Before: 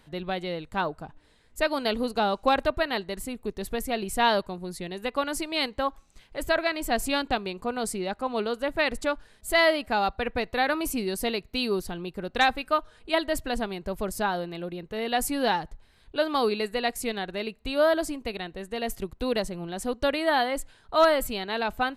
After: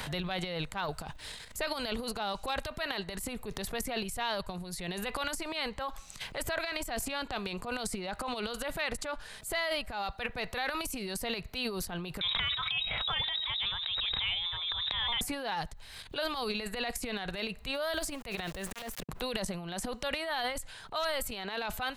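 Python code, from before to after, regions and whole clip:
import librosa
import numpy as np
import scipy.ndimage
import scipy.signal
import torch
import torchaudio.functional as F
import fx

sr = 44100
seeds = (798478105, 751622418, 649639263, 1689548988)

y = fx.chain(x, sr, fx.freq_invert(carrier_hz=3800),
    fx.pre_swell(db_per_s=28.0), at=(12.21, 15.21))
y = fx.chain(y, sr, fx.auto_swell(attack_ms=676.0),
    fx.sample_gate(floor_db=-49.5), at=(17.74, 19.09))
y = fx.peak_eq(y, sr, hz=300.0, db=-12.0, octaves=1.2)
y = fx.transient(y, sr, attack_db=-8, sustain_db=12)
y = fx.band_squash(y, sr, depth_pct=100)
y = y * 10.0 ** (-7.0 / 20.0)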